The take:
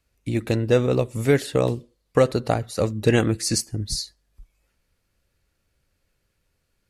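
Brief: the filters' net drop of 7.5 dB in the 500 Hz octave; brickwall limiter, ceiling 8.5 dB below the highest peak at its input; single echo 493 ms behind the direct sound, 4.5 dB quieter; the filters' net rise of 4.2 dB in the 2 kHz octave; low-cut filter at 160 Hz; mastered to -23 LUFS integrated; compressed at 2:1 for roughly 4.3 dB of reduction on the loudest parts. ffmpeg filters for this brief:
-af "highpass=160,equalizer=f=500:t=o:g=-9,equalizer=f=2000:t=o:g=6,acompressor=threshold=0.0631:ratio=2,alimiter=limit=0.133:level=0:latency=1,aecho=1:1:493:0.596,volume=2.37"

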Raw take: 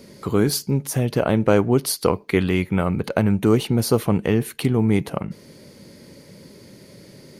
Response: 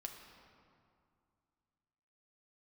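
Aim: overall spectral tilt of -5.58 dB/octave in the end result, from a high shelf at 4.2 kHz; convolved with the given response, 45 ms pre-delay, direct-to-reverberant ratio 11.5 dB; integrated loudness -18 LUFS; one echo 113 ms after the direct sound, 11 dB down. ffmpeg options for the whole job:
-filter_complex "[0:a]highshelf=f=4200:g=3,aecho=1:1:113:0.282,asplit=2[s0][s1];[1:a]atrim=start_sample=2205,adelay=45[s2];[s1][s2]afir=irnorm=-1:irlink=0,volume=0.376[s3];[s0][s3]amix=inputs=2:normalize=0,volume=1.26"

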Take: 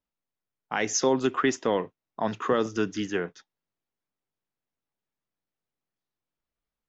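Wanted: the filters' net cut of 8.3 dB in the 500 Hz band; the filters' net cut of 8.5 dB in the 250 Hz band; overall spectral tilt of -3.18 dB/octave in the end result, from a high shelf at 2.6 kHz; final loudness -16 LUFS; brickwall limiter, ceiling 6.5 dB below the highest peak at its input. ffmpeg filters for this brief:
-af "equalizer=f=250:t=o:g=-8,equalizer=f=500:t=o:g=-7.5,highshelf=f=2600:g=-3.5,volume=8.91,alimiter=limit=0.708:level=0:latency=1"

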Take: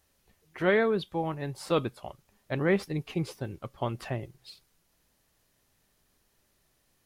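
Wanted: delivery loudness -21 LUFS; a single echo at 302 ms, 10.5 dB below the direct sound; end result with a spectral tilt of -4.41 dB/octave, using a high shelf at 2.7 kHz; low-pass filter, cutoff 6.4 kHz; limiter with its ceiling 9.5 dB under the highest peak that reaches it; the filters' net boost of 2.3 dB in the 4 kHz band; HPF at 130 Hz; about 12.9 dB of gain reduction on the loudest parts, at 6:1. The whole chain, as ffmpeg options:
-af "highpass=130,lowpass=6400,highshelf=f=2700:g=-4,equalizer=f=4000:t=o:g=6.5,acompressor=threshold=0.02:ratio=6,alimiter=level_in=2:limit=0.0631:level=0:latency=1,volume=0.501,aecho=1:1:302:0.299,volume=11.9"

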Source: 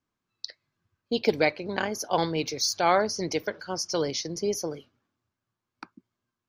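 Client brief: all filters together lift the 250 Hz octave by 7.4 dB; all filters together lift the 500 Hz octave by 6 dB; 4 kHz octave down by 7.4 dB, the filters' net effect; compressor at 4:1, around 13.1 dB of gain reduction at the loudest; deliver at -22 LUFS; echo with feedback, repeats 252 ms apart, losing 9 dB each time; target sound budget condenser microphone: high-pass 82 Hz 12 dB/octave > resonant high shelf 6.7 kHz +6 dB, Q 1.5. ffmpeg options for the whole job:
-af "equalizer=f=250:t=o:g=8.5,equalizer=f=500:t=o:g=5,equalizer=f=4000:t=o:g=-8.5,acompressor=threshold=0.0501:ratio=4,highpass=82,highshelf=f=6700:t=q:w=1.5:g=6,aecho=1:1:252|504|756|1008:0.355|0.124|0.0435|0.0152,volume=2.66"

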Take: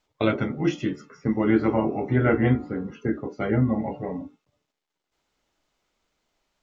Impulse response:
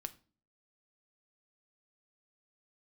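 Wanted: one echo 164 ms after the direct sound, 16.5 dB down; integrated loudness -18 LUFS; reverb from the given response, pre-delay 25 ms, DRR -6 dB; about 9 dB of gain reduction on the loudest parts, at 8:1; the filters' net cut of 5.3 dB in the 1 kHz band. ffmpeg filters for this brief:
-filter_complex "[0:a]equalizer=f=1000:t=o:g=-8,acompressor=threshold=0.0562:ratio=8,aecho=1:1:164:0.15,asplit=2[s0][s1];[1:a]atrim=start_sample=2205,adelay=25[s2];[s1][s2]afir=irnorm=-1:irlink=0,volume=2.82[s3];[s0][s3]amix=inputs=2:normalize=0,volume=2.11"

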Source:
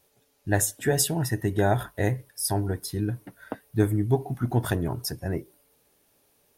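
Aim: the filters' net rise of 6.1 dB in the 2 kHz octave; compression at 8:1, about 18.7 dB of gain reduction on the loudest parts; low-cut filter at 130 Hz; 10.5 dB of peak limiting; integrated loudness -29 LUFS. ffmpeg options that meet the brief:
-af "highpass=130,equalizer=f=2000:t=o:g=7.5,acompressor=threshold=0.0141:ratio=8,volume=5.62,alimiter=limit=0.141:level=0:latency=1"

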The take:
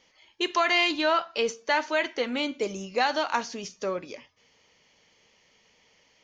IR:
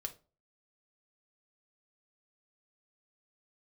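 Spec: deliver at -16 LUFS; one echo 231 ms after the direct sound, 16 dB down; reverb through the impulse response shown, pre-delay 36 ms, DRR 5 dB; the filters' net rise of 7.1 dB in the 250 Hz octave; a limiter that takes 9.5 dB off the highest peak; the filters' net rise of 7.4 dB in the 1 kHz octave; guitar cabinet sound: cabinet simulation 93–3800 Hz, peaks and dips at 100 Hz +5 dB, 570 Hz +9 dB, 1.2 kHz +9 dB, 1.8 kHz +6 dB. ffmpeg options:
-filter_complex "[0:a]equalizer=f=250:t=o:g=8.5,equalizer=f=1000:t=o:g=3.5,alimiter=limit=0.112:level=0:latency=1,aecho=1:1:231:0.158,asplit=2[s0][s1];[1:a]atrim=start_sample=2205,adelay=36[s2];[s1][s2]afir=irnorm=-1:irlink=0,volume=0.708[s3];[s0][s3]amix=inputs=2:normalize=0,highpass=93,equalizer=f=100:t=q:w=4:g=5,equalizer=f=570:t=q:w=4:g=9,equalizer=f=1200:t=q:w=4:g=9,equalizer=f=1800:t=q:w=4:g=6,lowpass=f=3800:w=0.5412,lowpass=f=3800:w=1.3066,volume=2.82"

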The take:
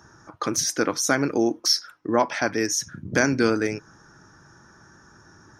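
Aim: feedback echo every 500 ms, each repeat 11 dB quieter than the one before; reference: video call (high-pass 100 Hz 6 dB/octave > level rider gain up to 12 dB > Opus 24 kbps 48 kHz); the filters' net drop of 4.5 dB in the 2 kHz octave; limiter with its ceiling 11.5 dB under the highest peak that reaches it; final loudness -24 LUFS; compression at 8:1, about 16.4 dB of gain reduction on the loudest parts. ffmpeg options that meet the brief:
-af "equalizer=f=2000:t=o:g=-6.5,acompressor=threshold=0.02:ratio=8,alimiter=level_in=2.24:limit=0.0631:level=0:latency=1,volume=0.447,highpass=f=100:p=1,aecho=1:1:500|1000|1500:0.282|0.0789|0.0221,dynaudnorm=m=3.98,volume=8.91" -ar 48000 -c:a libopus -b:a 24k

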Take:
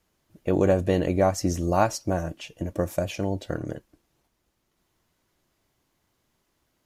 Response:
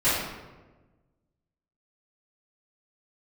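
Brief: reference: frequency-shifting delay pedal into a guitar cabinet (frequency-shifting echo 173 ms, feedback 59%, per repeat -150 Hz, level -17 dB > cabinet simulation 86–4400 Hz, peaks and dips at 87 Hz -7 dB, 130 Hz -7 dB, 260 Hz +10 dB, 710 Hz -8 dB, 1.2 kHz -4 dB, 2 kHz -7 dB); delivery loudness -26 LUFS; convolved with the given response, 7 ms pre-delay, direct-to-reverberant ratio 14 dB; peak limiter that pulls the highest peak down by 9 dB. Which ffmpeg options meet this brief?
-filter_complex "[0:a]alimiter=limit=0.158:level=0:latency=1,asplit=2[s0][s1];[1:a]atrim=start_sample=2205,adelay=7[s2];[s1][s2]afir=irnorm=-1:irlink=0,volume=0.0335[s3];[s0][s3]amix=inputs=2:normalize=0,asplit=7[s4][s5][s6][s7][s8][s9][s10];[s5]adelay=173,afreqshift=-150,volume=0.141[s11];[s6]adelay=346,afreqshift=-300,volume=0.0832[s12];[s7]adelay=519,afreqshift=-450,volume=0.049[s13];[s8]adelay=692,afreqshift=-600,volume=0.0292[s14];[s9]adelay=865,afreqshift=-750,volume=0.0172[s15];[s10]adelay=1038,afreqshift=-900,volume=0.0101[s16];[s4][s11][s12][s13][s14][s15][s16]amix=inputs=7:normalize=0,highpass=86,equalizer=f=87:t=q:w=4:g=-7,equalizer=f=130:t=q:w=4:g=-7,equalizer=f=260:t=q:w=4:g=10,equalizer=f=710:t=q:w=4:g=-8,equalizer=f=1200:t=q:w=4:g=-4,equalizer=f=2000:t=q:w=4:g=-7,lowpass=f=4400:w=0.5412,lowpass=f=4400:w=1.3066,volume=1.26"

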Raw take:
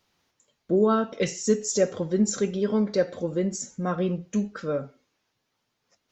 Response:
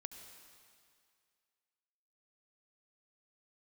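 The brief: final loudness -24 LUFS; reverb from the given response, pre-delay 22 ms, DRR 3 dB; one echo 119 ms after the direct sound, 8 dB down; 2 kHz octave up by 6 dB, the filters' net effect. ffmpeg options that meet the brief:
-filter_complex "[0:a]equalizer=f=2000:t=o:g=7.5,aecho=1:1:119:0.398,asplit=2[s0][s1];[1:a]atrim=start_sample=2205,adelay=22[s2];[s1][s2]afir=irnorm=-1:irlink=0,volume=1.12[s3];[s0][s3]amix=inputs=2:normalize=0"

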